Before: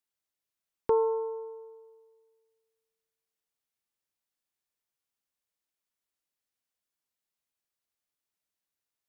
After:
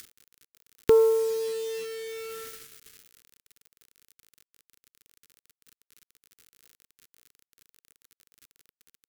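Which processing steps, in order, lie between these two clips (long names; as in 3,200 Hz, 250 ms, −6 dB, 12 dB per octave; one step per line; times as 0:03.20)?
upward compression, threshold −31 dBFS
bit-depth reduction 8 bits, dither none
flat-topped bell 760 Hz −14.5 dB 1.2 octaves
level +9 dB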